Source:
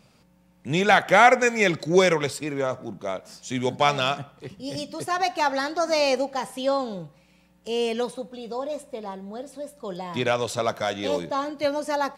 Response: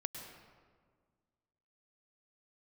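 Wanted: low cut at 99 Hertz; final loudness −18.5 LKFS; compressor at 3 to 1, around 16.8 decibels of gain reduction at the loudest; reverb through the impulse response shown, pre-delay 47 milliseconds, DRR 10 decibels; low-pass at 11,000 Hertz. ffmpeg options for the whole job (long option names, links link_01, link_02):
-filter_complex "[0:a]highpass=99,lowpass=11000,acompressor=threshold=-34dB:ratio=3,asplit=2[link_01][link_02];[1:a]atrim=start_sample=2205,adelay=47[link_03];[link_02][link_03]afir=irnorm=-1:irlink=0,volume=-9.5dB[link_04];[link_01][link_04]amix=inputs=2:normalize=0,volume=16.5dB"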